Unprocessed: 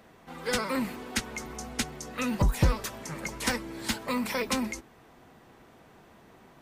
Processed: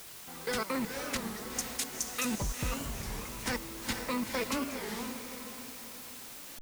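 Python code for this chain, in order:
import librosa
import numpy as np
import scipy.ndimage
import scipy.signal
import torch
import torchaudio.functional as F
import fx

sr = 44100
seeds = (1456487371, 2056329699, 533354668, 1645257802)

y = fx.riaa(x, sr, side='recording', at=(1.58, 2.25))
y = fx.level_steps(y, sr, step_db=16)
y = fx.quant_dither(y, sr, seeds[0], bits=8, dither='triangular')
y = fx.echo_diffused(y, sr, ms=468, feedback_pct=45, wet_db=-5)
y = fx.record_warp(y, sr, rpm=33.33, depth_cents=250.0)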